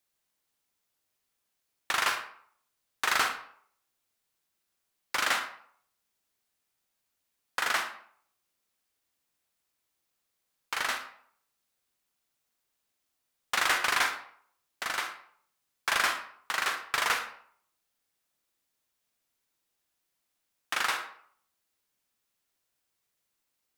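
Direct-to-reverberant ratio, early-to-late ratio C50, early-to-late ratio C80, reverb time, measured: 6.0 dB, 8.0 dB, 11.5 dB, 0.60 s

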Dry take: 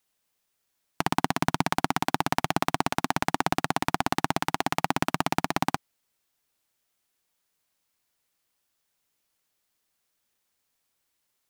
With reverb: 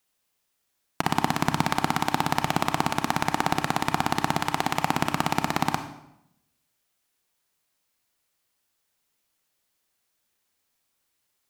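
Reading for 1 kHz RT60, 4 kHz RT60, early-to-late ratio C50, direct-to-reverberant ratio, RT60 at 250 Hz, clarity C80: 0.80 s, 0.65 s, 10.0 dB, 8.0 dB, 0.95 s, 12.5 dB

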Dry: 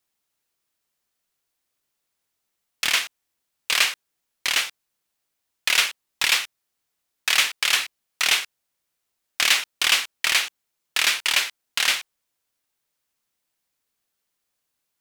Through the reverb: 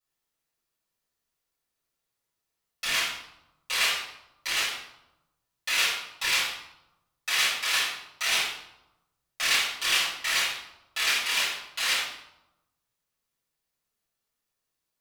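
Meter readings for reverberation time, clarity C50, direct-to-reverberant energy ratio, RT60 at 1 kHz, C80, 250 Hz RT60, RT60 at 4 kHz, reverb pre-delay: 0.90 s, 1.5 dB, -10.5 dB, 0.90 s, 4.5 dB, 1.1 s, 0.60 s, 5 ms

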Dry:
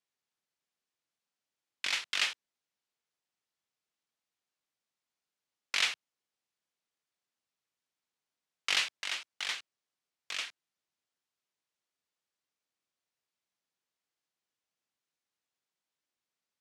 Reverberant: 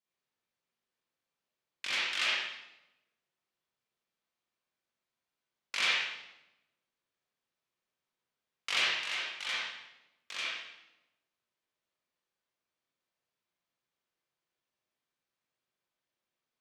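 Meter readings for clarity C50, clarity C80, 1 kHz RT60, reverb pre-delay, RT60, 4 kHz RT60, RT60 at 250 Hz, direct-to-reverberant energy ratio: -4.0 dB, 1.5 dB, 0.85 s, 36 ms, 0.95 s, 0.80 s, 1.2 s, -8.0 dB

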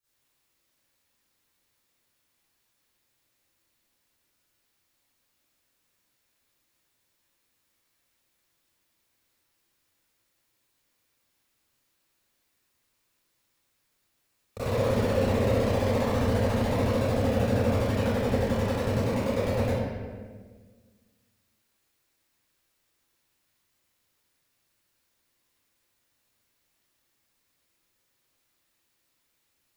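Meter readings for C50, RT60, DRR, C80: -7.5 dB, 1.5 s, -17.5 dB, -2.5 dB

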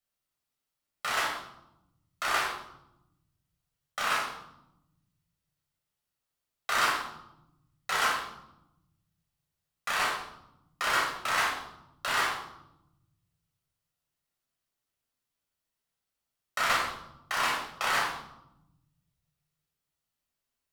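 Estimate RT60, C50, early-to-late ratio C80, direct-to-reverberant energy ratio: 0.85 s, 3.0 dB, 6.0 dB, -3.5 dB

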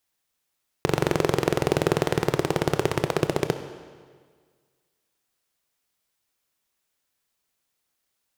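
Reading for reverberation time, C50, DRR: 1.7 s, 10.0 dB, 8.5 dB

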